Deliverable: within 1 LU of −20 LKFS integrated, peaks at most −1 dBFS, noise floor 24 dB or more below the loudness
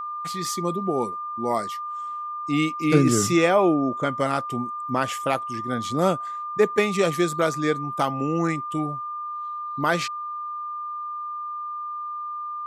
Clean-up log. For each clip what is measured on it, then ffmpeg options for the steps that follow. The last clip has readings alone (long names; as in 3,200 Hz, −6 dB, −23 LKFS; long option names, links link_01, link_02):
interfering tone 1,200 Hz; level of the tone −29 dBFS; integrated loudness −25.0 LKFS; sample peak −5.0 dBFS; target loudness −20.0 LKFS
→ -af "bandreject=frequency=1200:width=30"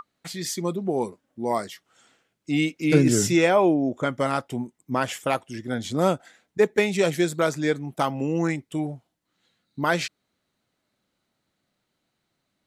interfering tone none found; integrated loudness −24.5 LKFS; sample peak −4.5 dBFS; target loudness −20.0 LKFS
→ -af "volume=4.5dB,alimiter=limit=-1dB:level=0:latency=1"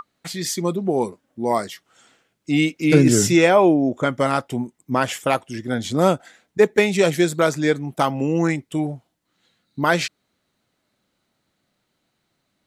integrated loudness −20.0 LKFS; sample peak −1.0 dBFS; background noise floor −73 dBFS